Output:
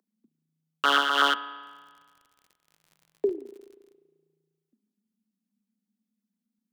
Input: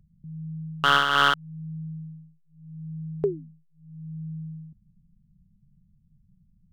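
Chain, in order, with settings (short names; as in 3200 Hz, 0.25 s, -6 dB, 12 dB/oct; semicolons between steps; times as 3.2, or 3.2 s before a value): steep high-pass 220 Hz 96 dB/oct; LFO notch saw down 8.2 Hz 640–3200 Hz; 1.61–3.91 crackle 73/s -45 dBFS; spring tank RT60 1.6 s, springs 35 ms, chirp 30 ms, DRR 13.5 dB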